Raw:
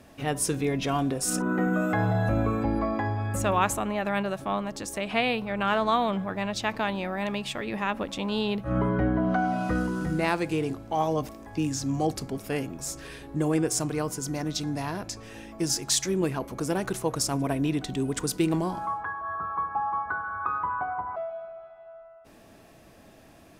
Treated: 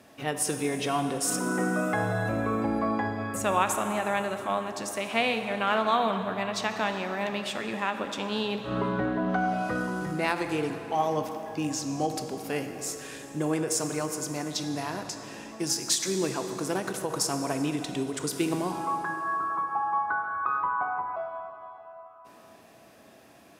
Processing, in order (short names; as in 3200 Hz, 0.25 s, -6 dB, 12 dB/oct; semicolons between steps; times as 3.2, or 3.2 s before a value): HPF 100 Hz 12 dB/oct; low shelf 240 Hz -6.5 dB; plate-style reverb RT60 3.5 s, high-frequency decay 0.75×, DRR 6.5 dB; ending taper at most 160 dB/s